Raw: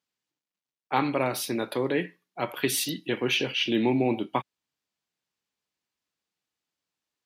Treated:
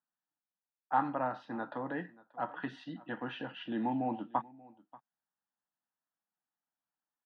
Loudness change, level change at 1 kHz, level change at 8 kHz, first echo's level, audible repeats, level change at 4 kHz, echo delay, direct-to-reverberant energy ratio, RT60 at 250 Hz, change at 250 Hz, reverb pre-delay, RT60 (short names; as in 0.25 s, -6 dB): -10.0 dB, -3.0 dB, under -40 dB, -22.0 dB, 1, -21.0 dB, 0.584 s, none, none, -9.5 dB, none, none